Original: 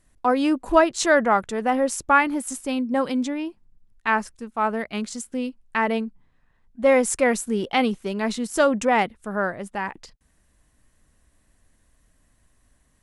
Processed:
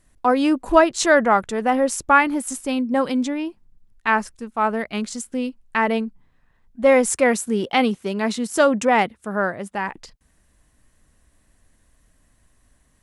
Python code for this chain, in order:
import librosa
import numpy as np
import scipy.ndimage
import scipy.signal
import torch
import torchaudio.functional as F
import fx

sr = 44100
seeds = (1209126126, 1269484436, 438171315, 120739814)

y = fx.highpass(x, sr, hz=76.0, slope=12, at=(7.13, 9.89))
y = y * 10.0 ** (2.5 / 20.0)